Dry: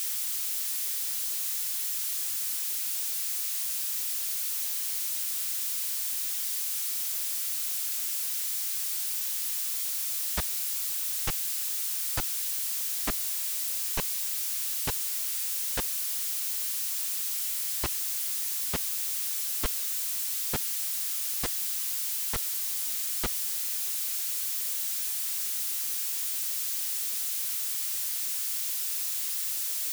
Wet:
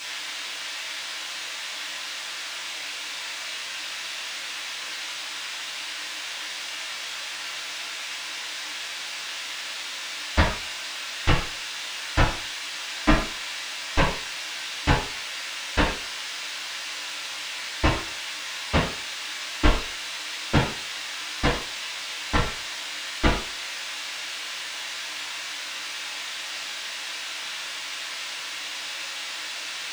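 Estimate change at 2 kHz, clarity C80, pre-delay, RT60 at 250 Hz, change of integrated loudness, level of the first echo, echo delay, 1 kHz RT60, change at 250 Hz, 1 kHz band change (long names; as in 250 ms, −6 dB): +14.5 dB, 9.5 dB, 3 ms, 0.40 s, −1.0 dB, no echo audible, no echo audible, 0.45 s, +16.5 dB, +15.0 dB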